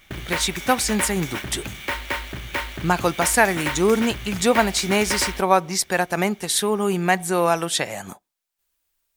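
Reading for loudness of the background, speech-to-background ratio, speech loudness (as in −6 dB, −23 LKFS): −29.5 LKFS, 8.0 dB, −21.5 LKFS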